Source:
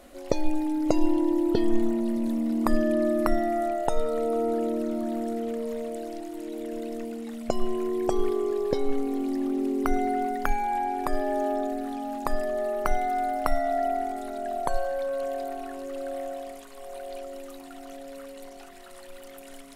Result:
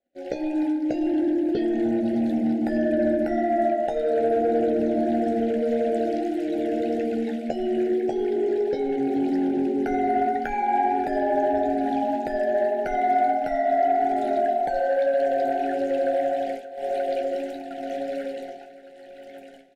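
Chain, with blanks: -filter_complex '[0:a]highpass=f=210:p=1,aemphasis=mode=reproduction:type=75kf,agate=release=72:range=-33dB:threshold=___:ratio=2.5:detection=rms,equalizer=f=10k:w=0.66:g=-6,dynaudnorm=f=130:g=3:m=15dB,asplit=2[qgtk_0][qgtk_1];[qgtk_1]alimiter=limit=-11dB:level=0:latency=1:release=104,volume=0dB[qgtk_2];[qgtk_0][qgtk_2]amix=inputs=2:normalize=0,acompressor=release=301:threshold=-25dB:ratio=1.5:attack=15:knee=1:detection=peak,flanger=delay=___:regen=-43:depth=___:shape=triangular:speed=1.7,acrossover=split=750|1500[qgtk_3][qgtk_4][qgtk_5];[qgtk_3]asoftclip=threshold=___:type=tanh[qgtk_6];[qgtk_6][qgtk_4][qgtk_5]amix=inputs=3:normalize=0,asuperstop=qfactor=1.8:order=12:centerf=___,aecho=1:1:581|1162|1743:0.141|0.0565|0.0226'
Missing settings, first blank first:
-40dB, 9.8, 6.8, -19dB, 1100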